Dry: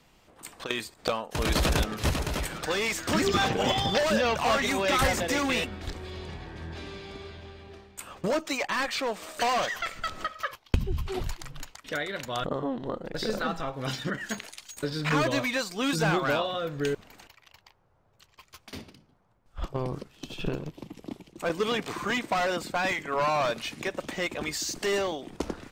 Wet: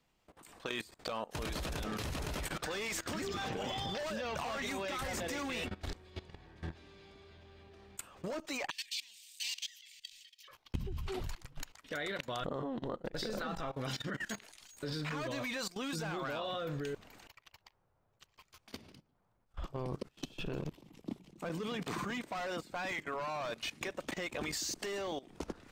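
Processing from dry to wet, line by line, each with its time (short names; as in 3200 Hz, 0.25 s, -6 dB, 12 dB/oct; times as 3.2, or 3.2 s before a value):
8.7–10.48 inverse Chebyshev high-pass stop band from 1400 Hz
21.04–22.21 bell 180 Hz +8 dB 0.97 oct
whole clip: level quantiser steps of 19 dB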